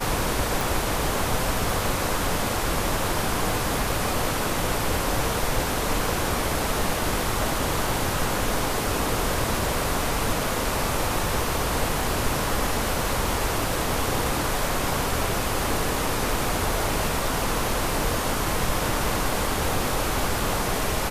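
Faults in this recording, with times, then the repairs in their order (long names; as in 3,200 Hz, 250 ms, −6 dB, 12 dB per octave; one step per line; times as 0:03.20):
0:00.61: click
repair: click removal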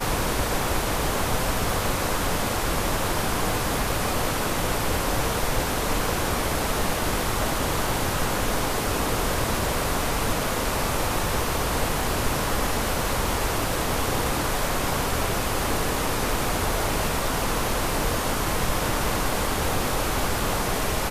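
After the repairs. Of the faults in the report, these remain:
none of them is left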